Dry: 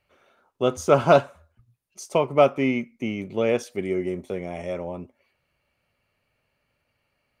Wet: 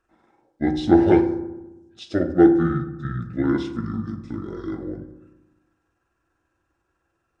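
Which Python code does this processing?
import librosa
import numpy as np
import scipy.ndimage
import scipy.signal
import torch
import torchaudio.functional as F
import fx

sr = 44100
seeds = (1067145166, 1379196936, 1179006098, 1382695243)

y = fx.pitch_heads(x, sr, semitones=-9.0)
y = fx.rev_fdn(y, sr, rt60_s=1.0, lf_ratio=1.3, hf_ratio=0.45, size_ms=18.0, drr_db=6.5)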